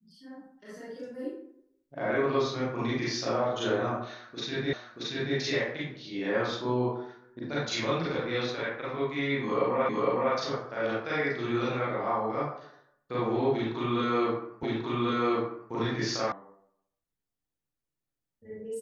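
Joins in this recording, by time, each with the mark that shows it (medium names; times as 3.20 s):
4.73 s: repeat of the last 0.63 s
9.89 s: repeat of the last 0.46 s
14.63 s: repeat of the last 1.09 s
16.32 s: sound stops dead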